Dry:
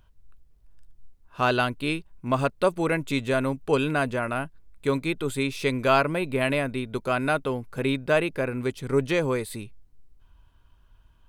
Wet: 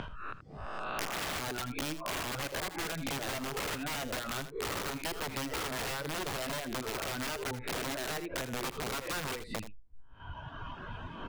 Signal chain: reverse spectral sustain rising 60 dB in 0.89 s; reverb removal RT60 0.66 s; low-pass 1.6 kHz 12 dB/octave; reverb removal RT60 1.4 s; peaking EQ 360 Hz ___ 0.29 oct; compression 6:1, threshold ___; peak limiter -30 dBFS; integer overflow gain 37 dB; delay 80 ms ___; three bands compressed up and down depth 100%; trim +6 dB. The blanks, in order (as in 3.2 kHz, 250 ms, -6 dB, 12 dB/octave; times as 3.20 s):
-2 dB, -39 dBFS, -13 dB